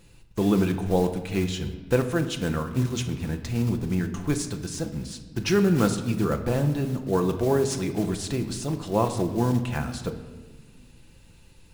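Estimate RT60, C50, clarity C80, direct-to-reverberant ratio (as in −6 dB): 1.4 s, 10.0 dB, 12.0 dB, 5.5 dB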